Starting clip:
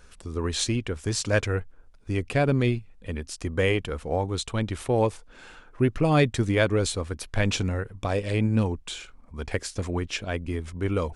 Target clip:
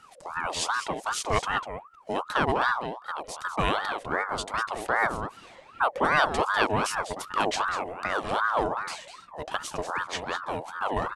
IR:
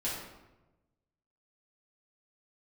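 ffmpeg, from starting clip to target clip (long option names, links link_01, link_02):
-filter_complex "[0:a]asplit=2[link_01][link_02];[link_02]adelay=198.3,volume=-8dB,highshelf=frequency=4000:gain=-4.46[link_03];[link_01][link_03]amix=inputs=2:normalize=0,aeval=exprs='val(0)*sin(2*PI*940*n/s+940*0.45/2.6*sin(2*PI*2.6*n/s))':channel_layout=same"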